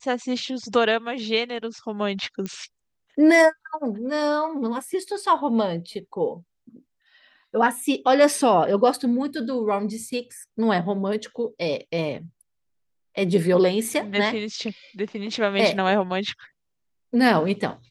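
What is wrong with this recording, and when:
2.46 s: pop -17 dBFS

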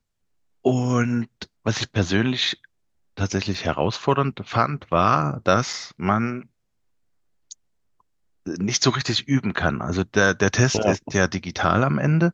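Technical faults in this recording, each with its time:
3.54 s: dropout 3.9 ms
5.73 s: dropout 4.2 ms

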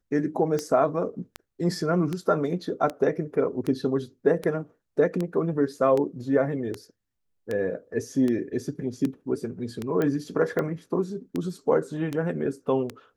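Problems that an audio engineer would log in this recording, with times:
tick 78 rpm -16 dBFS
10.02 s: pop -15 dBFS

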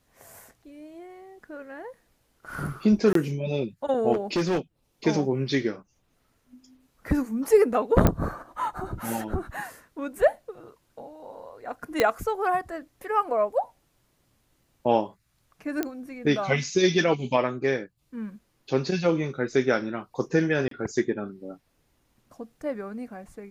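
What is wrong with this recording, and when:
3.13–3.15 s: dropout 23 ms
4.12–4.59 s: clipped -20.5 dBFS
8.07 s: pop -6 dBFS
12.00 s: pop -7 dBFS
15.83 s: pop -13 dBFS
20.68–20.71 s: dropout 33 ms

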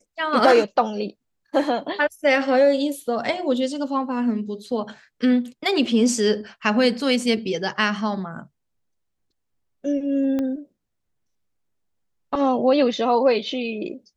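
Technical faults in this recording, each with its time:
10.39 s: pop -15 dBFS

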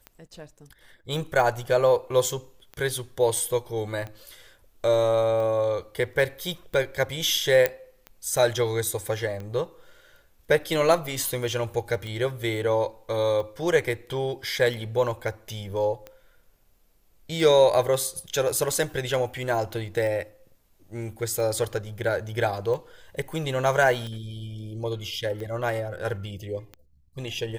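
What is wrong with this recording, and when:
tick 45 rpm -24 dBFS
7.66 s: pop -7 dBFS

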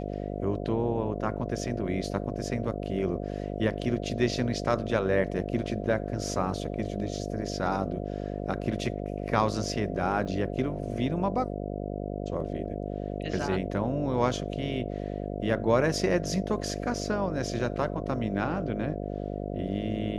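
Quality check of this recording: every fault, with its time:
buzz 50 Hz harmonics 14 -34 dBFS
10.25–10.26 s: dropout 6 ms

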